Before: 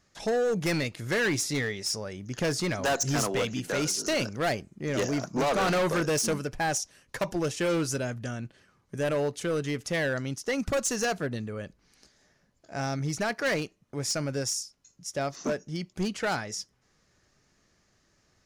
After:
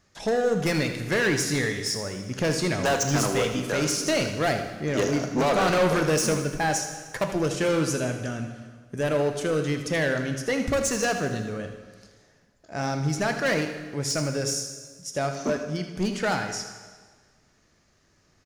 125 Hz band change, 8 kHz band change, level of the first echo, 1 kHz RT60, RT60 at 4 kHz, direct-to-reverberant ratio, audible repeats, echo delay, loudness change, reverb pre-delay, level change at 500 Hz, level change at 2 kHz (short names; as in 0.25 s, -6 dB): +4.0 dB, +2.5 dB, -11.5 dB, 1.5 s, 1.4 s, 5.5 dB, 2, 79 ms, +3.5 dB, 8 ms, +4.0 dB, +3.5 dB